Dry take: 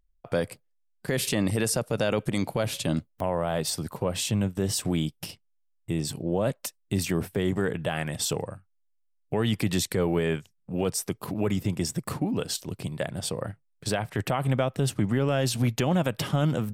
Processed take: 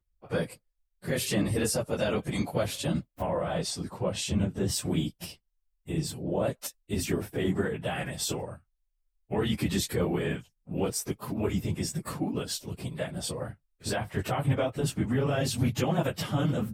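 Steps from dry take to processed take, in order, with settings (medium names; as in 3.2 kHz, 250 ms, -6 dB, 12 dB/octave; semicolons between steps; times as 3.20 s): phase randomisation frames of 50 ms; 3.26–4.68 s: low-pass 8.6 kHz 12 dB/octave; trim -2.5 dB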